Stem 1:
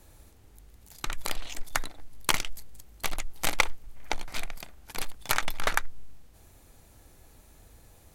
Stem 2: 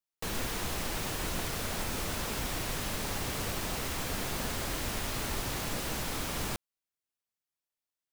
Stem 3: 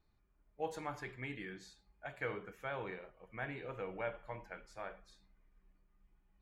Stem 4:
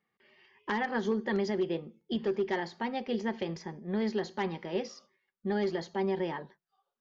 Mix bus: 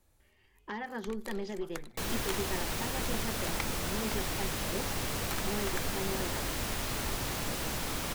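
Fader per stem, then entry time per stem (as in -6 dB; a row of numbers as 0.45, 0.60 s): -14.5, 0.0, -14.0, -7.5 dB; 0.00, 1.75, 0.75, 0.00 s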